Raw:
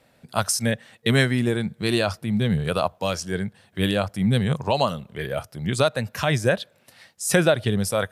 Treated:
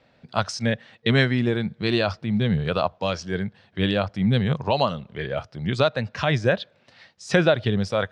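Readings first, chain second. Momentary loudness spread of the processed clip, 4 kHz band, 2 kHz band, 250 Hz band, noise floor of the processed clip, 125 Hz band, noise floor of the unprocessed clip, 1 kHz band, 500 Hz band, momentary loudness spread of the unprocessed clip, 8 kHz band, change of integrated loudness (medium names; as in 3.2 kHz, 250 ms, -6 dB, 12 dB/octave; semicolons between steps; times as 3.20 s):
9 LU, -0.5 dB, 0.0 dB, 0.0 dB, -61 dBFS, 0.0 dB, -61 dBFS, 0.0 dB, 0.0 dB, 9 LU, -13.0 dB, 0.0 dB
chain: low-pass 5.1 kHz 24 dB/octave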